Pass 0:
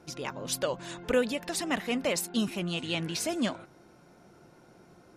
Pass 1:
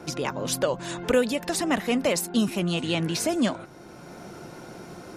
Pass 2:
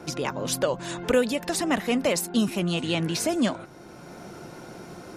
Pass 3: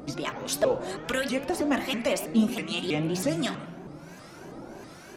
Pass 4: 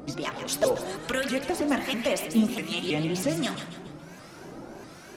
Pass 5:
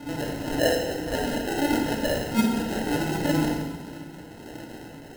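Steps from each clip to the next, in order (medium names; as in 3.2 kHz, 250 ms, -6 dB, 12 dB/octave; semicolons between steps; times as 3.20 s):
dynamic bell 2.9 kHz, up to -4 dB, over -45 dBFS, Q 0.73; three bands compressed up and down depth 40%; trim +6.5 dB
no audible change
harmonic tremolo 1.3 Hz, depth 70%, crossover 1.1 kHz; reverberation RT60 1.3 s, pre-delay 3 ms, DRR 4 dB; vibrato with a chosen wave saw up 3.1 Hz, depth 250 cents
feedback echo behind a high-pass 140 ms, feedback 42%, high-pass 1.5 kHz, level -7 dB
phase randomisation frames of 100 ms; sample-and-hold 38×; FDN reverb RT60 1.1 s, low-frequency decay 1.3×, high-frequency decay 0.95×, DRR 2 dB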